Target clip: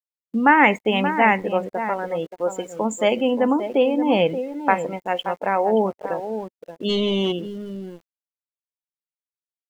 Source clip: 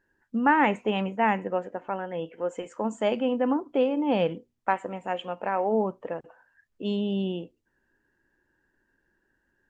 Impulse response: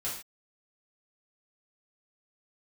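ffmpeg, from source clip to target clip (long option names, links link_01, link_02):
-filter_complex "[0:a]bass=frequency=250:gain=-2,treble=frequency=4000:gain=13,asplit=2[link_01][link_02];[link_02]adelay=577.3,volume=-9dB,highshelf=frequency=4000:gain=-13[link_03];[link_01][link_03]amix=inputs=2:normalize=0,aeval=exprs='val(0)*gte(abs(val(0)),0.00891)':channel_layout=same,adynamicequalizer=threshold=0.00316:dfrequency=2100:dqfactor=6.2:tfrequency=2100:tqfactor=6.2:attack=5:release=100:ratio=0.375:range=4:mode=boostabove:tftype=bell,asplit=3[link_04][link_05][link_06];[link_04]afade=type=out:start_time=6.88:duration=0.02[link_07];[link_05]asplit=2[link_08][link_09];[link_09]highpass=frequency=720:poles=1,volume=20dB,asoftclip=type=tanh:threshold=-18.5dB[link_10];[link_08][link_10]amix=inputs=2:normalize=0,lowpass=frequency=4300:poles=1,volume=-6dB,afade=type=in:start_time=6.88:duration=0.02,afade=type=out:start_time=7.31:duration=0.02[link_11];[link_06]afade=type=in:start_time=7.31:duration=0.02[link_12];[link_07][link_11][link_12]amix=inputs=3:normalize=0,afftdn=noise_reduction=13:noise_floor=-37,volume=6dB"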